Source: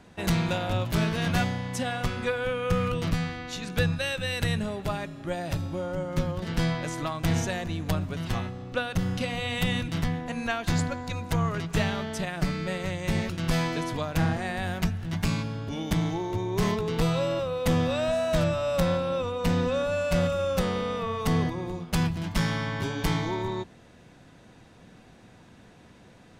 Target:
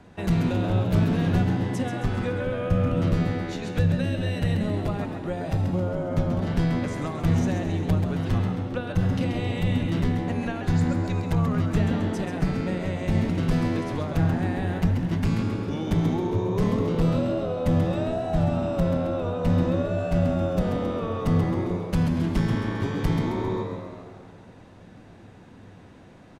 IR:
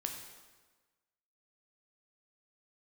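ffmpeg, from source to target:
-filter_complex "[0:a]asplit=2[link_01][link_02];[link_02]equalizer=frequency=100:width=8:gain=15[link_03];[1:a]atrim=start_sample=2205,asetrate=24255,aresample=44100[link_04];[link_03][link_04]afir=irnorm=-1:irlink=0,volume=-9.5dB[link_05];[link_01][link_05]amix=inputs=2:normalize=0,acrossover=split=400[link_06][link_07];[link_07]acompressor=threshold=-32dB:ratio=4[link_08];[link_06][link_08]amix=inputs=2:normalize=0,highshelf=frequency=2300:gain=-8,asplit=7[link_09][link_10][link_11][link_12][link_13][link_14][link_15];[link_10]adelay=134,afreqshift=82,volume=-7dB[link_16];[link_11]adelay=268,afreqshift=164,volume=-13.2dB[link_17];[link_12]adelay=402,afreqshift=246,volume=-19.4dB[link_18];[link_13]adelay=536,afreqshift=328,volume=-25.6dB[link_19];[link_14]adelay=670,afreqshift=410,volume=-31.8dB[link_20];[link_15]adelay=804,afreqshift=492,volume=-38dB[link_21];[link_09][link_16][link_17][link_18][link_19][link_20][link_21]amix=inputs=7:normalize=0"

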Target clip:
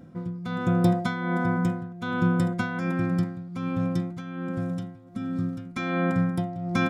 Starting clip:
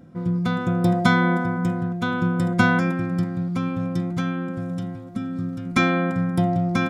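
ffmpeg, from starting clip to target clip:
ffmpeg -i in.wav -af "tremolo=f=1.3:d=0.78" out.wav

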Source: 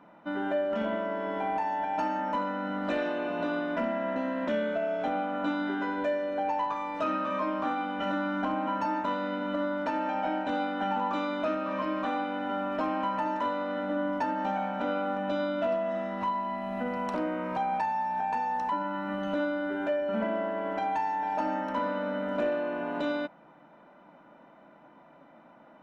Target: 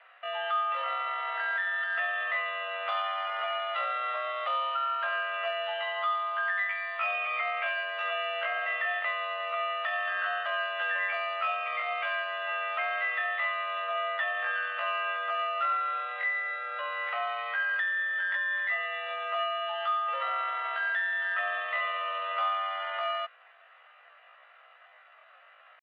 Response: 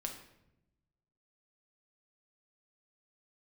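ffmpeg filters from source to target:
-af "asetrate=83250,aresample=44100,atempo=0.529732,highpass=frequency=540:width_type=q:width=0.5412,highpass=frequency=540:width_type=q:width=1.307,lowpass=frequency=3200:width_type=q:width=0.5176,lowpass=frequency=3200:width_type=q:width=0.7071,lowpass=frequency=3200:width_type=q:width=1.932,afreqshift=120"

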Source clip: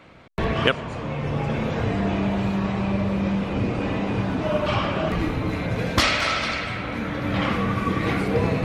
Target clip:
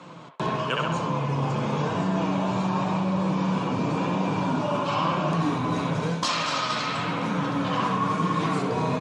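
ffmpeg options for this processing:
ffmpeg -i in.wav -filter_complex "[0:a]acrossover=split=500|4300[link_01][link_02][link_03];[link_01]asoftclip=type=tanh:threshold=-21dB[link_04];[link_02]aecho=1:1:64|128|192|256|320:0.708|0.283|0.113|0.0453|0.0181[link_05];[link_03]acontrast=65[link_06];[link_04][link_05][link_06]amix=inputs=3:normalize=0,flanger=delay=5.4:depth=2.4:regen=67:speed=1:shape=sinusoidal,asetrate=42336,aresample=44100,areverse,acompressor=threshold=-31dB:ratio=5,areverse,highpass=frequency=120:width=0.5412,highpass=frequency=120:width=1.3066,equalizer=frequency=160:width_type=q:width=4:gain=8,equalizer=frequency=290:width_type=q:width=4:gain=4,equalizer=frequency=1000:width_type=q:width=4:gain=9,equalizer=frequency=2000:width_type=q:width=4:gain=-10,equalizer=frequency=6900:width_type=q:width=4:gain=4,lowpass=frequency=8800:width=0.5412,lowpass=frequency=8800:width=1.3066,volume=6.5dB" out.wav

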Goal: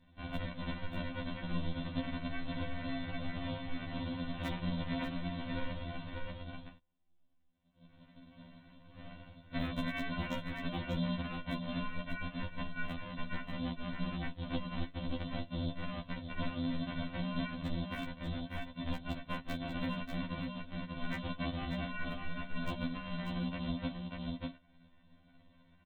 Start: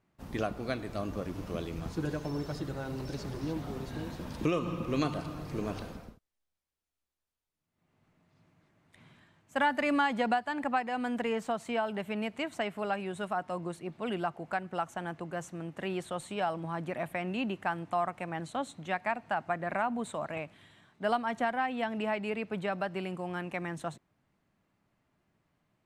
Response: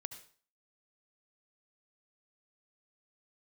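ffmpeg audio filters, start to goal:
-af "aresample=8000,acrusher=samples=19:mix=1:aa=0.000001,aresample=44100,afftfilt=real='re*lt(hypot(re,im),0.398)':imag='im*lt(hypot(re,im),0.398)':win_size=1024:overlap=0.75,asoftclip=type=hard:threshold=-21dB,aemphasis=mode=production:type=50fm,flanger=delay=1.1:depth=9.1:regen=65:speed=0.16:shape=sinusoidal,aecho=1:1:590:0.376,acompressor=threshold=-55dB:ratio=3,aecho=1:1:4:0.46,afftfilt=real='re*2*eq(mod(b,4),0)':imag='im*2*eq(mod(b,4),0)':win_size=2048:overlap=0.75,volume=17dB"

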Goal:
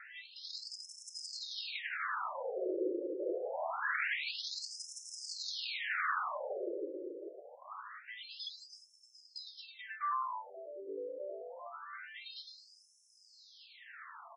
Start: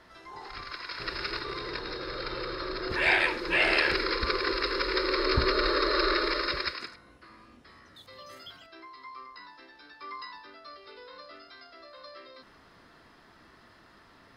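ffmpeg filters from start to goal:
ffmpeg -i in.wav -filter_complex "[0:a]acrossover=split=1400|3000[link_01][link_02][link_03];[link_01]acompressor=threshold=-33dB:ratio=4[link_04];[link_02]acompressor=threshold=-34dB:ratio=4[link_05];[link_03]acompressor=threshold=-49dB:ratio=4[link_06];[link_04][link_05][link_06]amix=inputs=3:normalize=0,asoftclip=type=tanh:threshold=-37.5dB,asplit=2[link_07][link_08];[link_08]adelay=435,lowpass=frequency=4200:poles=1,volume=-6dB,asplit=2[link_09][link_10];[link_10]adelay=435,lowpass=frequency=4200:poles=1,volume=0.43,asplit=2[link_11][link_12];[link_12]adelay=435,lowpass=frequency=4200:poles=1,volume=0.43,asplit=2[link_13][link_14];[link_14]adelay=435,lowpass=frequency=4200:poles=1,volume=0.43,asplit=2[link_15][link_16];[link_16]adelay=435,lowpass=frequency=4200:poles=1,volume=0.43[link_17];[link_09][link_11][link_13][link_15][link_17]amix=inputs=5:normalize=0[link_18];[link_07][link_18]amix=inputs=2:normalize=0,afftfilt=real='re*between(b*sr/1024,400*pow(7400/400,0.5+0.5*sin(2*PI*0.25*pts/sr))/1.41,400*pow(7400/400,0.5+0.5*sin(2*PI*0.25*pts/sr))*1.41)':imag='im*between(b*sr/1024,400*pow(7400/400,0.5+0.5*sin(2*PI*0.25*pts/sr))/1.41,400*pow(7400/400,0.5+0.5*sin(2*PI*0.25*pts/sr))*1.41)':win_size=1024:overlap=0.75,volume=9dB" out.wav

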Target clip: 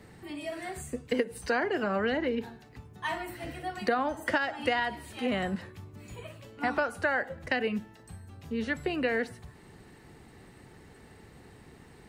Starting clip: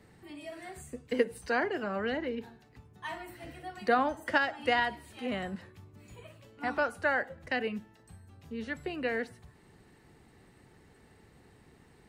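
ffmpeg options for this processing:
ffmpeg -i in.wav -af "acompressor=threshold=-31dB:ratio=6,volume=6.5dB" out.wav

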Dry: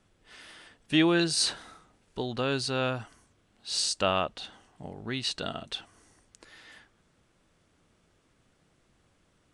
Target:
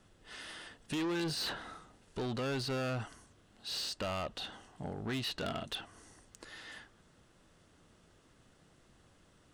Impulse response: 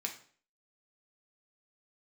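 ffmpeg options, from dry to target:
-filter_complex "[0:a]bandreject=frequency=2300:width=10,acrossover=split=3400[link_01][link_02];[link_01]alimiter=limit=-23dB:level=0:latency=1:release=66[link_03];[link_02]acompressor=threshold=-48dB:ratio=5[link_04];[link_03][link_04]amix=inputs=2:normalize=0,asoftclip=type=tanh:threshold=-35dB,volume=3dB"

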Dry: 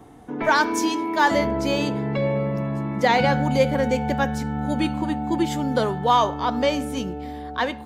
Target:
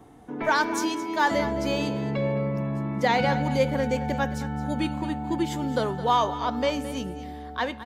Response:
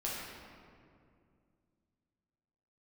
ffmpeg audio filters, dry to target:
-af "aecho=1:1:217|434:0.2|0.0359,volume=-4dB"

